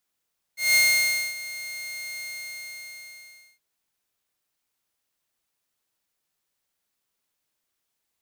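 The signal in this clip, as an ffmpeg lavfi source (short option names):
-f lavfi -i "aevalsrc='0.224*(2*mod(2130*t,1)-1)':d=3.02:s=44100,afade=t=in:d=0.177,afade=t=out:st=0.177:d=0.592:silence=0.133,afade=t=out:st=1.64:d=1.38"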